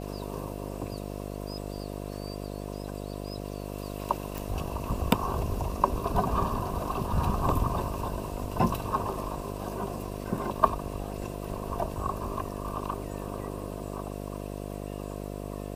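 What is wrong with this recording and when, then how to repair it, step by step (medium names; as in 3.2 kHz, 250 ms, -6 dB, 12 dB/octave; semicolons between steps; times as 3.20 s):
buzz 50 Hz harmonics 14 -37 dBFS
4.38 s: pop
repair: de-click; de-hum 50 Hz, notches 14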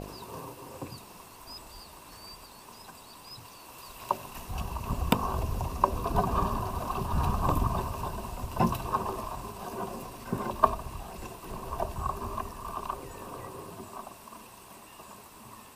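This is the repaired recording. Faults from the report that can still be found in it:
nothing left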